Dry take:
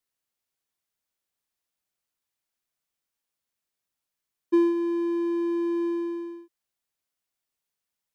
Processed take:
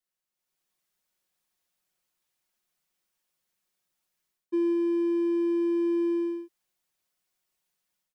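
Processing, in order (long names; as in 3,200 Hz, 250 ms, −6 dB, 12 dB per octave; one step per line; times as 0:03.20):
automatic gain control gain up to 9 dB
comb filter 5.5 ms, depth 57%
reversed playback
downward compressor 12 to 1, threshold −18 dBFS, peak gain reduction 13.5 dB
reversed playback
level −5.5 dB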